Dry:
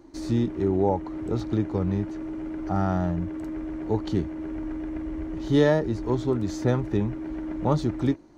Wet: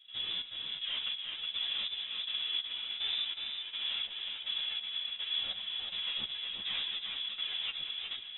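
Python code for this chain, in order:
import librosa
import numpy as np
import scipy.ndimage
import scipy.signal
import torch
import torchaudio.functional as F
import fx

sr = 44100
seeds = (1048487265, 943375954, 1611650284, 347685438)

p1 = scipy.signal.sosfilt(scipy.signal.butter(2, 220.0, 'highpass', fs=sr, output='sos'), x)
p2 = p1 + 0.64 * np.pad(p1, (int(5.4 * sr / 1000.0), 0))[:len(p1)]
p3 = fx.over_compress(p2, sr, threshold_db=-28.0, ratio=-1.0)
p4 = fx.tube_stage(p3, sr, drive_db=38.0, bias=0.7)
p5 = fx.step_gate(p4, sr, bpm=185, pattern='.xxxx....', floor_db=-12.0, edge_ms=4.5)
p6 = p5 + fx.echo_feedback(p5, sr, ms=368, feedback_pct=40, wet_db=-4.0, dry=0)
p7 = fx.freq_invert(p6, sr, carrier_hz=3700)
p8 = fx.ensemble(p7, sr)
y = p8 * librosa.db_to_amplitude(7.0)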